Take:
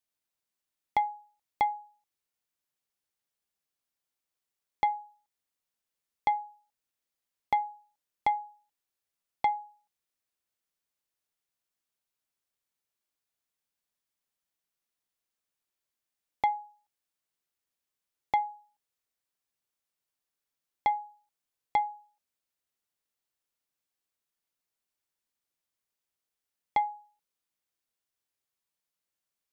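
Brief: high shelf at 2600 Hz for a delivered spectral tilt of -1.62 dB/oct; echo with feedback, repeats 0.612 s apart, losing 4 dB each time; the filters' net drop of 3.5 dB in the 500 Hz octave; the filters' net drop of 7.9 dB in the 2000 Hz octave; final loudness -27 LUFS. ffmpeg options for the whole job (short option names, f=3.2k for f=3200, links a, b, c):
-af "equalizer=f=500:t=o:g=-4,equalizer=f=2k:t=o:g=-5.5,highshelf=f=2.6k:g=-6,aecho=1:1:612|1224|1836|2448|3060|3672|4284|4896|5508:0.631|0.398|0.25|0.158|0.0994|0.0626|0.0394|0.0249|0.0157,volume=11dB"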